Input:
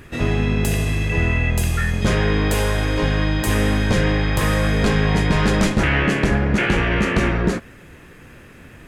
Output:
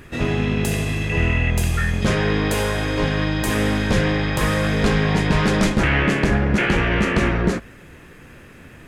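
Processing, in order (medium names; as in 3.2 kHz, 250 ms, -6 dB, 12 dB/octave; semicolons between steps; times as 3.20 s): hum notches 50/100 Hz; loudspeaker Doppler distortion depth 0.15 ms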